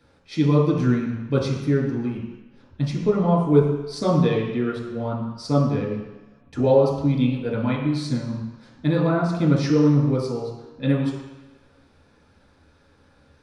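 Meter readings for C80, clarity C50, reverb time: 5.5 dB, 2.5 dB, 1.1 s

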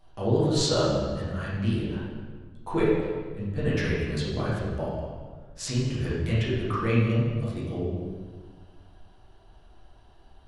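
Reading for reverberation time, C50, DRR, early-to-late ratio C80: 1.5 s, −1.0 dB, −9.0 dB, 2.0 dB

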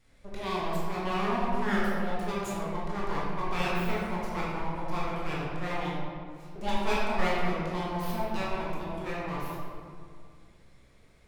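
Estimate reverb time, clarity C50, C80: 2.1 s, −2.0 dB, 0.5 dB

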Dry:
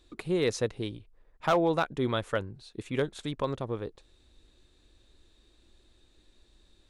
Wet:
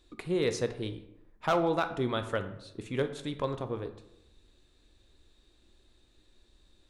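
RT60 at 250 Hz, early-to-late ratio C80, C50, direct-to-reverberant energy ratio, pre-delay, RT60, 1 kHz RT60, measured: 0.85 s, 14.0 dB, 11.0 dB, 8.0 dB, 10 ms, 0.85 s, 0.85 s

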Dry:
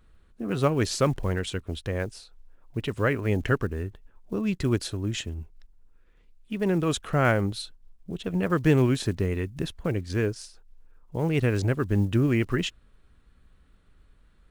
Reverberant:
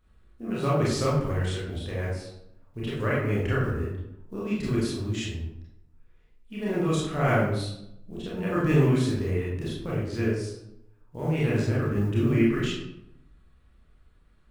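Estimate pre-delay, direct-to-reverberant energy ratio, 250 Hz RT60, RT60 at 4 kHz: 25 ms, −7.5 dB, 1.0 s, 0.50 s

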